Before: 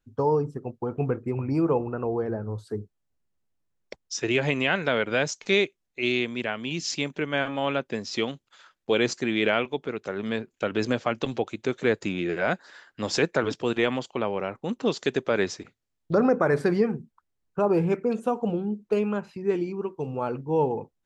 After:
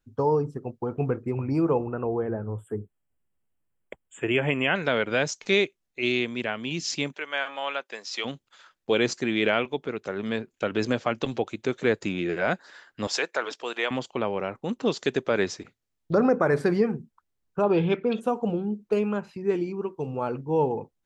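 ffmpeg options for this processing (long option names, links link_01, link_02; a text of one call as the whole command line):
ffmpeg -i in.wav -filter_complex "[0:a]asplit=3[link_01][link_02][link_03];[link_01]afade=type=out:start_time=1.86:duration=0.02[link_04];[link_02]asuperstop=centerf=5000:order=20:qfactor=1.3,afade=type=in:start_time=1.86:duration=0.02,afade=type=out:start_time=4.74:duration=0.02[link_05];[link_03]afade=type=in:start_time=4.74:duration=0.02[link_06];[link_04][link_05][link_06]amix=inputs=3:normalize=0,asplit=3[link_07][link_08][link_09];[link_07]afade=type=out:start_time=7.13:duration=0.02[link_10];[link_08]highpass=740,afade=type=in:start_time=7.13:duration=0.02,afade=type=out:start_time=8.24:duration=0.02[link_11];[link_09]afade=type=in:start_time=8.24:duration=0.02[link_12];[link_10][link_11][link_12]amix=inputs=3:normalize=0,asettb=1/sr,asplit=3[link_13][link_14][link_15];[link_13]atrim=end=13.074[link_16];[link_14]atrim=start=13.07:end=13.91,asetpts=PTS-STARTPTS,afade=type=in:duration=0.004:curve=qsin,afade=type=out:start_time=0.836:duration=0.004:curve=qsin,highpass=630[link_17];[link_15]atrim=start=13.906[link_18];[link_16][link_17]acrossfade=duration=0.004:curve1=hsin:curve2=qsin[link_19];[link_19][link_18]acrossfade=duration=0.004:curve1=qsin:curve2=hsin,asettb=1/sr,asplit=3[link_20][link_21][link_22];[link_20]atrim=end=17.634[link_23];[link_21]atrim=start=17.63:end=18.21,asetpts=PTS-STARTPTS,afade=type=in:duration=0.004:curve=qsin,afade=type=out:start_time=0.576:duration=0.004:curve=qsin,lowpass=frequency=3400:width_type=q:width=9.8[link_24];[link_22]atrim=start=18.206[link_25];[link_23][link_24]acrossfade=duration=0.004:curve1=hsin:curve2=qsin[link_26];[link_26][link_25]acrossfade=duration=0.004:curve1=qsin:curve2=hsin" out.wav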